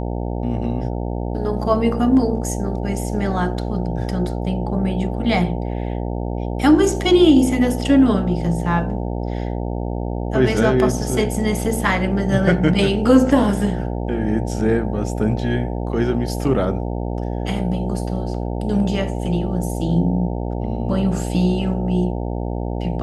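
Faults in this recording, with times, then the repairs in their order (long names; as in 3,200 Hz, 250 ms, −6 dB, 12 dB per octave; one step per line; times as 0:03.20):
mains buzz 60 Hz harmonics 15 −24 dBFS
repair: hum removal 60 Hz, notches 15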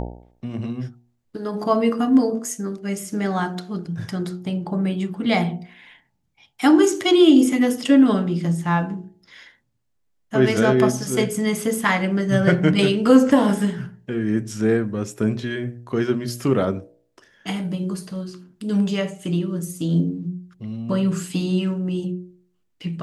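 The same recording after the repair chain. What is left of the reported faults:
none of them is left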